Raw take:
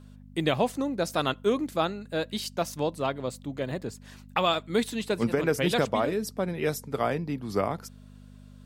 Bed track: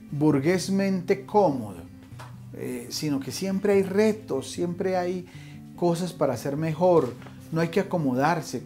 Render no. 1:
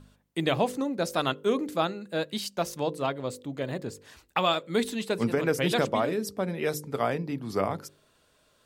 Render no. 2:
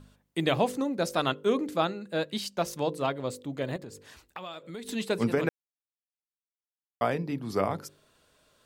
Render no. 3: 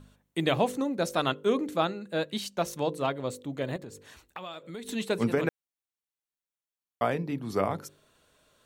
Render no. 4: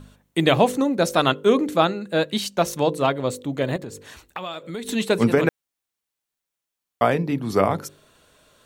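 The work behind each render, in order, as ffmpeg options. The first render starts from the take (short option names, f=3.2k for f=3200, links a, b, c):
-af "bandreject=f=50:t=h:w=4,bandreject=f=100:t=h:w=4,bandreject=f=150:t=h:w=4,bandreject=f=200:t=h:w=4,bandreject=f=250:t=h:w=4,bandreject=f=300:t=h:w=4,bandreject=f=350:t=h:w=4,bandreject=f=400:t=h:w=4,bandreject=f=450:t=h:w=4,bandreject=f=500:t=h:w=4,bandreject=f=550:t=h:w=4"
-filter_complex "[0:a]asettb=1/sr,asplit=3[a][b][c];[a]atrim=end=1.094[d];[b]atrim=start=1.09:end=2.68,asetpts=PTS-STARTPTS,afade=t=in:d=0.004:c=qsin,afade=t=out:st=1.586:d=0.004:c=qsin,highshelf=f=8.6k:g=-5[e];[c]atrim=start=2.676[f];[d][e]acrossfade=d=0.004:c1=hsin:c2=qsin[g];[g][f]acrossfade=d=0.004:c1=qsin:c2=hsin,asettb=1/sr,asplit=3[h][i][j];[h]atrim=end=3.764[k];[i]atrim=start=3.76:end=4.89,asetpts=PTS-STARTPTS,afade=t=in:d=0.004:c=qsin,afade=t=out:st=1.126:d=0.004:c=qsin,acompressor=threshold=-39dB:ratio=4:attack=3.2:release=140:knee=1:detection=peak[l];[j]atrim=start=4.886[m];[k][l]acrossfade=d=0.004:c1=hsin:c2=qsin[n];[n][m]acrossfade=d=0.004:c1=qsin:c2=hsin,asplit=3[o][p][q];[o]atrim=end=5.49,asetpts=PTS-STARTPTS,afade=t=out:st=5.486:d=0.004:c=hsin[r];[p]atrim=start=5.49:end=7.01,asetpts=PTS-STARTPTS,volume=0[s];[q]atrim=start=7.01,asetpts=PTS-STARTPTS,afade=t=in:d=0.004:c=hsin[t];[r][s][t]concat=n=3:v=0:a=1"
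-af "bandreject=f=4.9k:w=9.2"
-af "volume=8.5dB"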